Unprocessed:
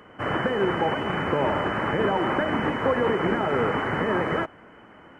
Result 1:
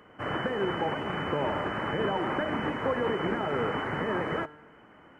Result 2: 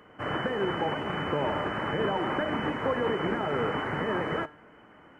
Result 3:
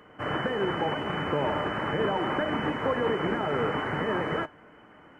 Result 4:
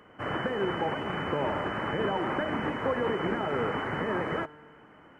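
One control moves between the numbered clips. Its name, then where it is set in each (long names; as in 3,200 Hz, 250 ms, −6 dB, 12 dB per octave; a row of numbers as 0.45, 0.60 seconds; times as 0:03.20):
tuned comb filter, decay: 0.97, 0.41, 0.17, 2.2 seconds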